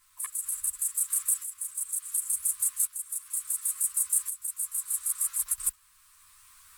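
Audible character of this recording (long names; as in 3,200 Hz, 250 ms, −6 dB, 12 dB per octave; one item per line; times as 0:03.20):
tremolo saw up 0.7 Hz, depth 75%
a shimmering, thickened sound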